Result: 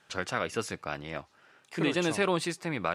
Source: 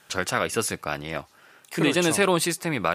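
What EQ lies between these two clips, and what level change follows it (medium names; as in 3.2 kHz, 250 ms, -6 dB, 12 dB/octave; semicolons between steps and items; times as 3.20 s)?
distance through air 62 m; -6.0 dB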